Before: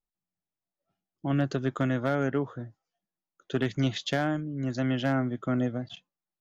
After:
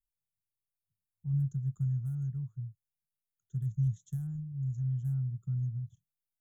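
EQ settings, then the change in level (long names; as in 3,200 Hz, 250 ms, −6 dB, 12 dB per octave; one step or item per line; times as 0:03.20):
inverse Chebyshev band-stop filter 250–5,000 Hz, stop band 40 dB
dynamic equaliser 200 Hz, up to +7 dB, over −51 dBFS, Q 1.2
+1.5 dB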